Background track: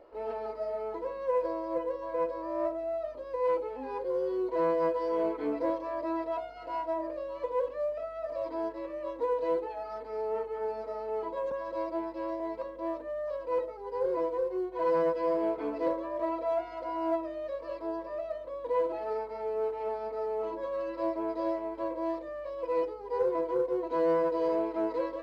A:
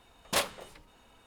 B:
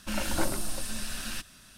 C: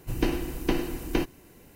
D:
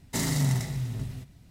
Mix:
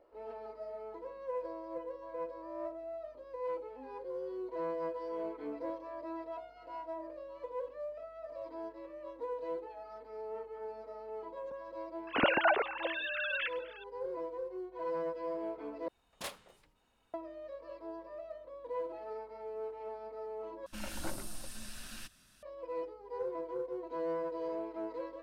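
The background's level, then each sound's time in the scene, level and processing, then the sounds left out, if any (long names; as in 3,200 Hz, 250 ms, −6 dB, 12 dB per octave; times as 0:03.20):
background track −9.5 dB
0:12.07: mix in B −3 dB + three sine waves on the formant tracks
0:15.88: overwrite with A −14 dB
0:20.66: overwrite with B −11 dB
not used: C, D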